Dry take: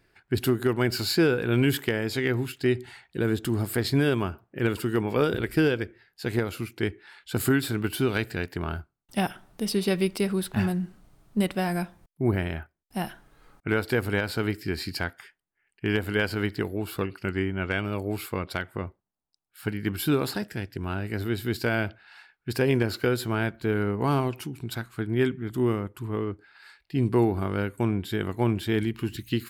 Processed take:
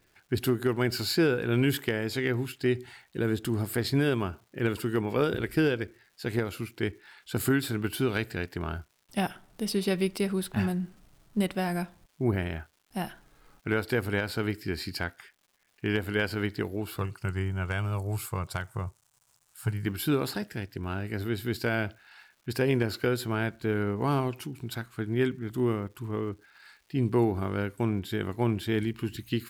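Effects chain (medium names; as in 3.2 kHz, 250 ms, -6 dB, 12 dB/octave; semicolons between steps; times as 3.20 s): crackle 410 per s -51 dBFS; 16.99–19.86 s: graphic EQ 125/250/500/1000/2000/4000/8000 Hz +11/-11/-3/+4/-5/-4/+9 dB; trim -2.5 dB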